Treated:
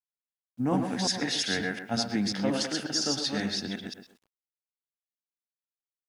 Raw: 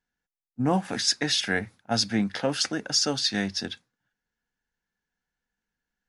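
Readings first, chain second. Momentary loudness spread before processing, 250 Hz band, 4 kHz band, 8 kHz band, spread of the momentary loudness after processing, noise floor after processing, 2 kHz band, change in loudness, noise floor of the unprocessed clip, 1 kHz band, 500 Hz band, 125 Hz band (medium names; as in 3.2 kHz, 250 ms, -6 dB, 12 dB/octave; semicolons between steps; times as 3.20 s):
6 LU, -0.5 dB, -4.0 dB, -4.0 dB, 7 LU, under -85 dBFS, -3.5 dB, -3.0 dB, under -85 dBFS, -3.0 dB, -2.5 dB, -2.5 dB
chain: chunks repeated in reverse 179 ms, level -2.5 dB; speakerphone echo 110 ms, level -10 dB; dynamic bell 260 Hz, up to +4 dB, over -36 dBFS, Q 1.7; on a send: tape echo 127 ms, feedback 24%, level -8 dB, low-pass 1.5 kHz; on the sum: bit crusher 10-bit; trim -6 dB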